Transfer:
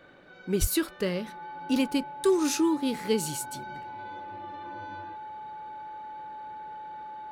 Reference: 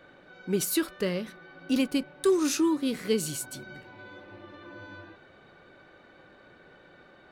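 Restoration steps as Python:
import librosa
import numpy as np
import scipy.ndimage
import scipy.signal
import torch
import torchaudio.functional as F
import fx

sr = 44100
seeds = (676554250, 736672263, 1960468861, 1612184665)

y = fx.notch(x, sr, hz=860.0, q=30.0)
y = fx.highpass(y, sr, hz=140.0, slope=24, at=(0.6, 0.72), fade=0.02)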